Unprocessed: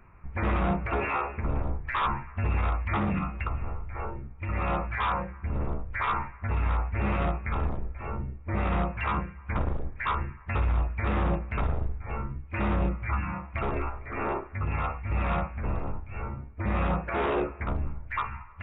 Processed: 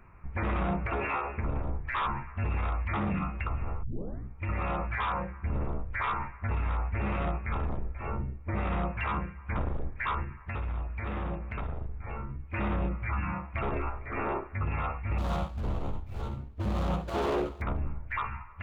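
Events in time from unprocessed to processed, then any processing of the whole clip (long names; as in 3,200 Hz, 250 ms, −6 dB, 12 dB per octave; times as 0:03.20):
0:03.83: tape start 0.45 s
0:10.23–0:12.40: downward compressor 2.5 to 1, threshold −34 dBFS
0:15.18–0:17.62: running median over 25 samples
whole clip: brickwall limiter −23 dBFS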